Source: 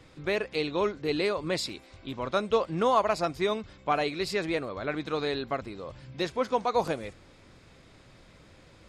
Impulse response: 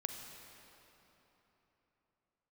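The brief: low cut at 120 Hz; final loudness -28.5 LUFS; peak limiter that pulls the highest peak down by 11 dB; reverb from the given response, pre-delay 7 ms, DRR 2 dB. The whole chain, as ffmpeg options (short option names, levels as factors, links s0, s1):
-filter_complex "[0:a]highpass=120,alimiter=limit=0.0794:level=0:latency=1,asplit=2[s0][s1];[1:a]atrim=start_sample=2205,adelay=7[s2];[s1][s2]afir=irnorm=-1:irlink=0,volume=0.794[s3];[s0][s3]amix=inputs=2:normalize=0,volume=1.41"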